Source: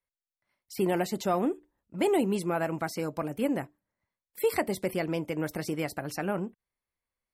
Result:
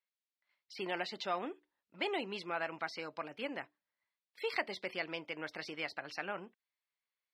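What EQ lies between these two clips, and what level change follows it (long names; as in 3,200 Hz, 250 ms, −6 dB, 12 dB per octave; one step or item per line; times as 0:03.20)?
resonant band-pass 4,800 Hz, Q 1.5
high-frequency loss of the air 370 metres
+13.0 dB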